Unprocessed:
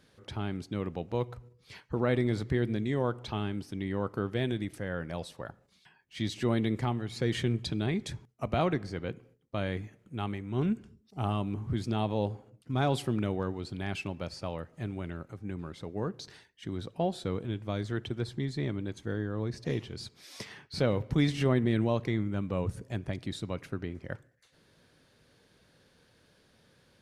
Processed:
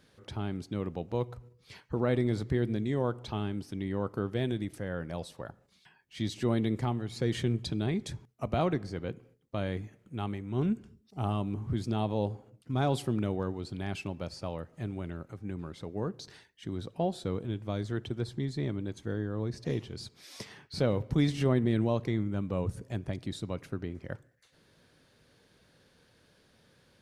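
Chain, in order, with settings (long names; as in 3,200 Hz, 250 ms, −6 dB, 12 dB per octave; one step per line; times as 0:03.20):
dynamic equaliser 2,100 Hz, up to −4 dB, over −51 dBFS, Q 0.81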